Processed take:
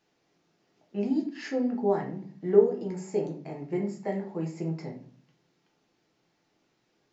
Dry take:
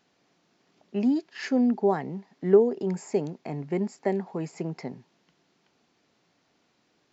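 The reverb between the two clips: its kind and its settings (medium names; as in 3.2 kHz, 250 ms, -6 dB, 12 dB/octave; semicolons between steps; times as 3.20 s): simulated room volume 37 m³, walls mixed, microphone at 0.65 m; trim -7.5 dB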